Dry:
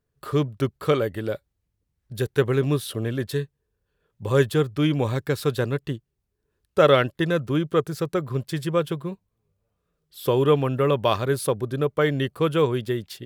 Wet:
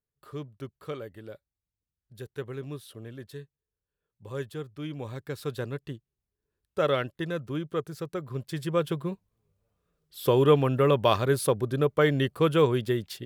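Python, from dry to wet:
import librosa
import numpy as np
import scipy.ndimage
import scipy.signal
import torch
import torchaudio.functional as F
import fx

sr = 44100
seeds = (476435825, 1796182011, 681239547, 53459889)

y = fx.gain(x, sr, db=fx.line((4.79, -15.5), (5.56, -9.0), (8.2, -9.0), (9.04, -1.0)))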